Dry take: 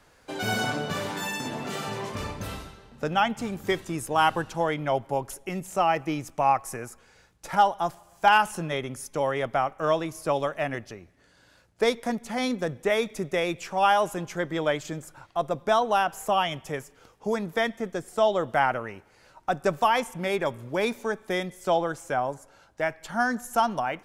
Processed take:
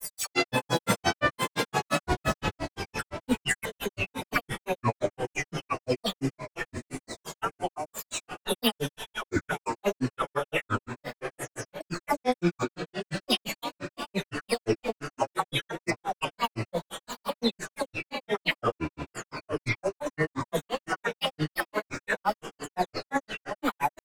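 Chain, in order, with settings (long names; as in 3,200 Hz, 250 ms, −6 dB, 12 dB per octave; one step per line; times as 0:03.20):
every frequency bin delayed by itself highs early, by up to 424 ms
comb filter 2.3 ms, depth 31%
compressor whose output falls as the input rises −30 dBFS, ratio −0.5
on a send: feedback delay with all-pass diffusion 797 ms, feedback 42%, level −9 dB
on the sum: granular cloud 102 ms, grains 5.8 per second, pitch spread up and down by 7 semitones
level +6.5 dB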